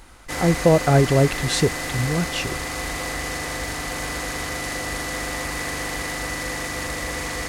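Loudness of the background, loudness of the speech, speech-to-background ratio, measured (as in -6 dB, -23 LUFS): -27.0 LUFS, -20.5 LUFS, 6.5 dB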